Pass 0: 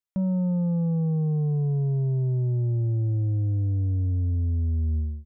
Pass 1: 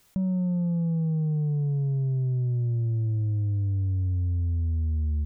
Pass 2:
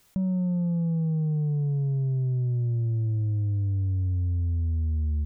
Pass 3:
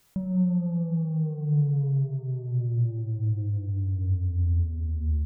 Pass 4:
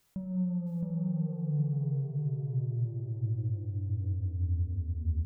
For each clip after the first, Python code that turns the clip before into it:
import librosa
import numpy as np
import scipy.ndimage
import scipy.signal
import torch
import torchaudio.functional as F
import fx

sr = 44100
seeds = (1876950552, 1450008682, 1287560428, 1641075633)

y1 = fx.low_shelf(x, sr, hz=250.0, db=8.0)
y1 = fx.env_flatten(y1, sr, amount_pct=100)
y1 = y1 * librosa.db_to_amplitude(-9.0)
y2 = y1
y3 = fx.rev_plate(y2, sr, seeds[0], rt60_s=2.4, hf_ratio=0.4, predelay_ms=0, drr_db=4.5)
y3 = y3 * librosa.db_to_amplitude(-2.0)
y4 = fx.echo_feedback(y3, sr, ms=666, feedback_pct=15, wet_db=-3.0)
y4 = y4 * librosa.db_to_amplitude(-7.5)